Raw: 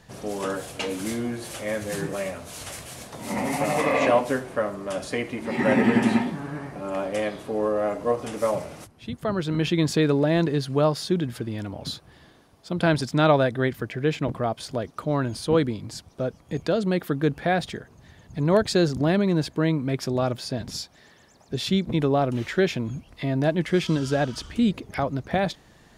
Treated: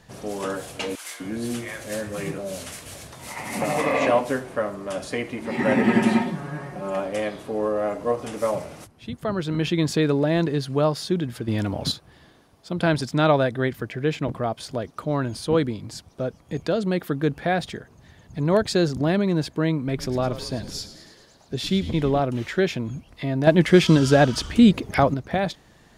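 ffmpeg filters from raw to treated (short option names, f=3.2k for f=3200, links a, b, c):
-filter_complex "[0:a]asettb=1/sr,asplit=3[a][b][c];[a]atrim=end=0.954[d];[b]atrim=start=0.95:end=3.62,asetpts=PTS-STARTPTS,afade=t=in:d=0.004:c=qsin,afade=t=out:st=2.666:d=0.004:c=qsin,acrossover=split=800[e][f];[e]adelay=250[g];[g][f]amix=inputs=2:normalize=0,atrim=end_sample=117747[h];[c]atrim=start=3.616[i];[d][h]acrossfade=d=0.004:c1=hsin:c2=qsin[j];[j][i]acrossfade=d=0.004:c1=qsin:c2=hsin,asettb=1/sr,asplit=3[k][l][m];[k]atrim=end=5.874[n];[l]atrim=start=5.87:end=7,asetpts=PTS-STARTPTS,afade=t=in:d=0.004:c=qsin,afade=t=out:st=1.126:d=0.004:c=qsin,aecho=1:1:5.5:0.65,atrim=end_sample=49833[o];[m]atrim=start=6.996[p];[n][o]acrossfade=d=0.004:c1=hsin:c2=qsin[q];[q][p]acrossfade=d=0.004:c1=qsin:c2=hsin,asettb=1/sr,asplit=3[r][s][t];[r]atrim=end=11.484[u];[s]atrim=start=11.48:end=11.92,asetpts=PTS-STARTPTS,afade=t=in:d=0.004:c=qsin,afade=t=out:st=0.436:d=0.004:c=qsin,acontrast=89[v];[t]atrim=start=11.916[w];[u][v]acrossfade=d=0.004:c1=hsin:c2=qsin[x];[x][w]acrossfade=d=0.004:c1=qsin:c2=hsin,asettb=1/sr,asplit=3[y][z][aa];[y]atrim=end=19.774[ab];[z]atrim=start=19.77:end=22.2,asetpts=PTS-STARTPTS,afade=t=in:d=0.004:c=qsin,afade=t=out:st=2.426:d=0.004:c=qsin,asplit=8[ac][ad][ae][af][ag][ah][ai][aj];[ad]adelay=107,afreqshift=-110,volume=-13dB[ak];[ae]adelay=214,afreqshift=-220,volume=-16.9dB[al];[af]adelay=321,afreqshift=-330,volume=-20.8dB[am];[ag]adelay=428,afreqshift=-440,volume=-24.6dB[an];[ah]adelay=535,afreqshift=-550,volume=-28.5dB[ao];[ai]adelay=642,afreqshift=-660,volume=-32.4dB[ap];[aj]adelay=749,afreqshift=-770,volume=-36.3dB[aq];[ac][ak][al][am][an][ao][ap][aq]amix=inputs=8:normalize=0,atrim=end_sample=107163[ar];[aa]atrim=start=22.196[as];[ab][ar]acrossfade=d=0.004:c1=hsin:c2=qsin[at];[at][as]acrossfade=d=0.004:c1=qsin:c2=hsin,asplit=3[au][av][aw];[au]atrim=end=23.472[ax];[av]atrim=start=23.468:end=25.142,asetpts=PTS-STARTPTS,volume=7.5dB[ay];[aw]atrim=start=25.138[az];[ax][ay]acrossfade=d=0.004:c1=hsin:c2=hsin[ba];[ba][az]acrossfade=d=0.004:c1=hsin:c2=hsin"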